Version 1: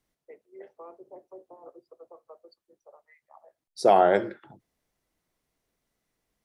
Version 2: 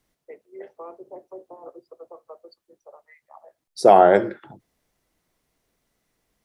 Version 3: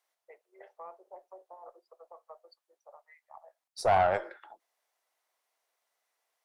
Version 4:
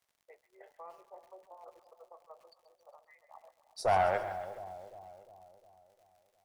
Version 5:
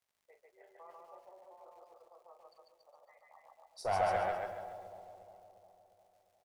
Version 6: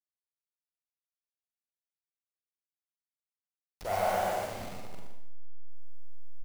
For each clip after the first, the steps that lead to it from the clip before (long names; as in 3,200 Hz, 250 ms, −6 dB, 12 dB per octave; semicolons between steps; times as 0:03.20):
dynamic equaliser 3,700 Hz, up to −5 dB, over −43 dBFS, Q 0.74; level +6.5 dB
downward compressor 1.5 to 1, threshold −20 dBFS, peak gain reduction 5 dB; four-pole ladder high-pass 570 Hz, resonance 30%; tube saturation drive 19 dB, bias 0.45; level +2 dB
surface crackle 82 per second −54 dBFS; echo with a time of its own for lows and highs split 860 Hz, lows 354 ms, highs 134 ms, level −12 dB; feedback echo at a low word length 101 ms, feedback 35%, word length 8 bits, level −14.5 dB; level −3 dB
loudspeakers that aren't time-aligned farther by 14 metres −9 dB, 50 metres −1 dB, 97 metres −4 dB; level −6.5 dB
hold until the input has moved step −38 dBFS; single-tap delay 120 ms −8.5 dB; four-comb reverb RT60 0.71 s, combs from 32 ms, DRR 0 dB